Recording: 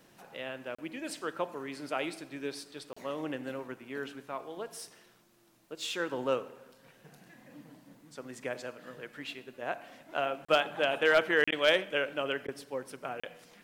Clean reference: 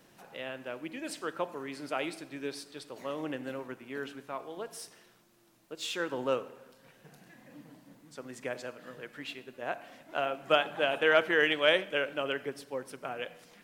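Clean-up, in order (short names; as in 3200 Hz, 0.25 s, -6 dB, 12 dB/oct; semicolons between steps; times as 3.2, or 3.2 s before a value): clip repair -15.5 dBFS; interpolate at 0.75/2.93/10.45/11.44/13.2, 35 ms; interpolate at 11.51/12.47, 11 ms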